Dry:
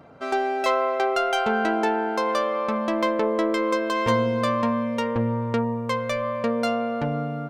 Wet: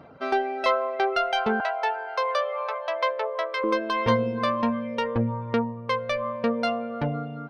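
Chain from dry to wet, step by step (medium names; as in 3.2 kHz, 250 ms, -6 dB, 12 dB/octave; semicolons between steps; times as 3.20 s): 1.60–3.64 s: steep high-pass 490 Hz 48 dB/octave; reverb removal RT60 0.89 s; Savitzky-Golay filter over 15 samples; trim +1 dB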